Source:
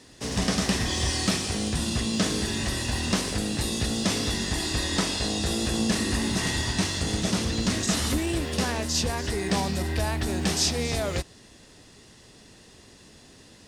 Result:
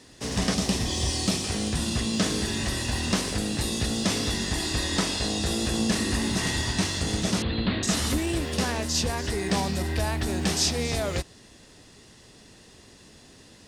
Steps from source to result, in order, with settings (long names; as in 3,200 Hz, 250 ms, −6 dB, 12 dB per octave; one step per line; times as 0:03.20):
0:00.54–0:01.44: parametric band 1,600 Hz −8 dB 1 octave
0:07.42–0:07.83: Butterworth low-pass 4,300 Hz 96 dB per octave